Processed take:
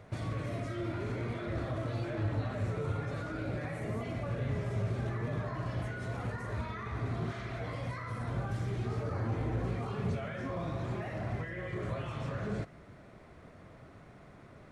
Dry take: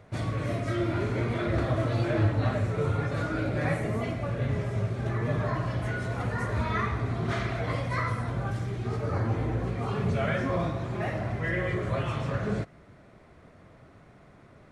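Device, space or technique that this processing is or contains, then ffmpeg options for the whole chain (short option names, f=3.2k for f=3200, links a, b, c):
de-esser from a sidechain: -filter_complex "[0:a]asplit=2[a][b];[b]highpass=f=5.1k:p=1,apad=whole_len=648734[c];[a][c]sidechaincompress=threshold=-52dB:ratio=5:attack=0.74:release=29"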